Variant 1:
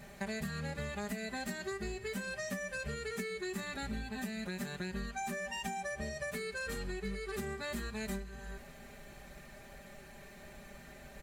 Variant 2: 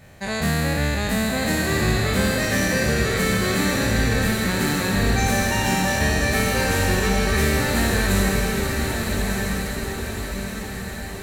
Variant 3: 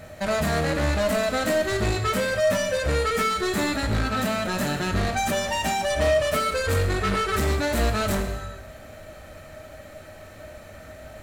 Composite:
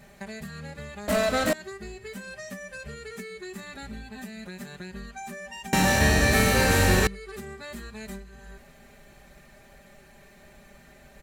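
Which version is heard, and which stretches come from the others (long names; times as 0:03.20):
1
0:01.08–0:01.53: punch in from 3
0:05.73–0:07.07: punch in from 2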